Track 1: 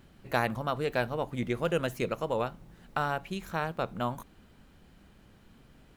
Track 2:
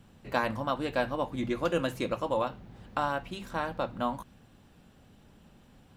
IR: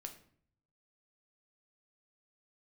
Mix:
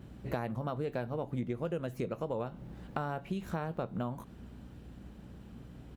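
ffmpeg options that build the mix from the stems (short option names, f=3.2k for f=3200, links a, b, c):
-filter_complex "[0:a]tiltshelf=f=910:g=6.5,volume=1dB,asplit=2[a][b];[1:a]aeval=exprs='val(0)+0.00501*(sin(2*PI*60*n/s)+sin(2*PI*2*60*n/s)/2+sin(2*PI*3*60*n/s)/3+sin(2*PI*4*60*n/s)/4+sin(2*PI*5*60*n/s)/5)':c=same,acompressor=threshold=-34dB:ratio=1.5,adelay=14,volume=-3.5dB[c];[b]apad=whole_len=263730[d];[c][d]sidechaincompress=threshold=-31dB:ratio=8:attack=16:release=206[e];[a][e]amix=inputs=2:normalize=0,highpass=56,acompressor=threshold=-32dB:ratio=6"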